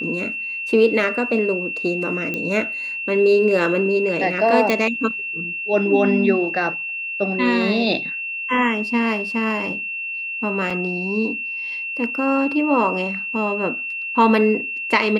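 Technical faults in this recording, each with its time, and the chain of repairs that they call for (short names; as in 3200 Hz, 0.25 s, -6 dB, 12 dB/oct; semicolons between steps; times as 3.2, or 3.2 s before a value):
tone 2700 Hz -25 dBFS
2.34 pop -12 dBFS
4.7 pop -6 dBFS
10.7 gap 4.4 ms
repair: de-click; notch 2700 Hz, Q 30; interpolate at 10.7, 4.4 ms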